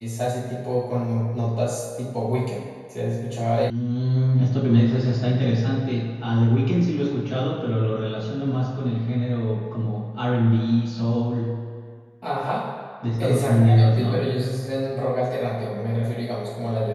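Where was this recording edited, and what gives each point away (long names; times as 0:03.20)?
0:03.70: cut off before it has died away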